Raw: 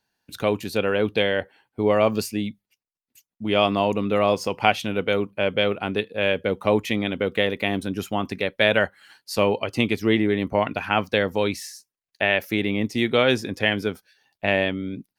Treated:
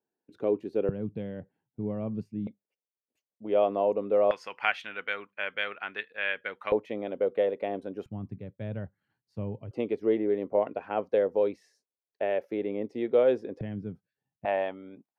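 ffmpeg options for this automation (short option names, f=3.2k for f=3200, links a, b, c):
-af "asetnsamples=n=441:p=0,asendcmd='0.89 bandpass f 150;2.47 bandpass f 520;4.31 bandpass f 1700;6.72 bandpass f 550;8.06 bandpass f 120;9.71 bandpass f 490;13.61 bandpass f 140;14.45 bandpass f 780',bandpass=f=380:t=q:w=2.4:csg=0"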